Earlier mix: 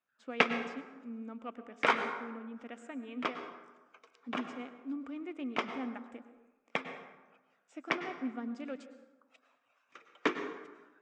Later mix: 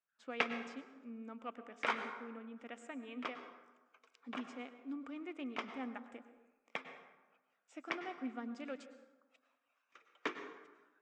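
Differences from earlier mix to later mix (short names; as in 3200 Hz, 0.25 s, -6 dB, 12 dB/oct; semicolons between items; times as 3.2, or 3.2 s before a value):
background -7.0 dB; master: add low shelf 410 Hz -7 dB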